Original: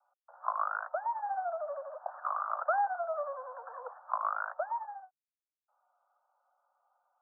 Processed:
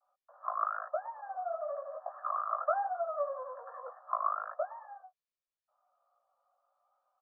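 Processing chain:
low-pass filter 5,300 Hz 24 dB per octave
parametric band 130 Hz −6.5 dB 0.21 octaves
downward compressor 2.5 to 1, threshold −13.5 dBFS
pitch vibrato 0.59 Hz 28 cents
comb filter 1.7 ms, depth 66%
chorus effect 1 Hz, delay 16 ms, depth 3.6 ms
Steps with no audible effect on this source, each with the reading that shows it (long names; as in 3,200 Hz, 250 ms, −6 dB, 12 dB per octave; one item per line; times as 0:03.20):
low-pass filter 5,300 Hz: nothing at its input above 1,700 Hz
parametric band 130 Hz: nothing at its input below 450 Hz
downward compressor, threshold −13.5 dBFS: peak of its input −17.0 dBFS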